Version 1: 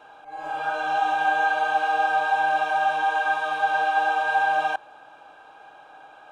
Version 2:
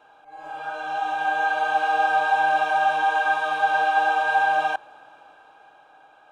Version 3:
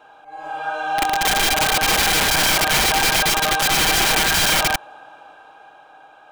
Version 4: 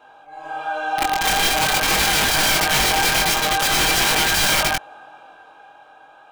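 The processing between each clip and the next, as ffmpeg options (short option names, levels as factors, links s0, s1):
-af "dynaudnorm=f=220:g=13:m=2.66,volume=0.531"
-af "aeval=exprs='(mod(8.41*val(0)+1,2)-1)/8.41':c=same,volume=2"
-af "flanger=delay=20:depth=3.4:speed=0.45,volume=1.33"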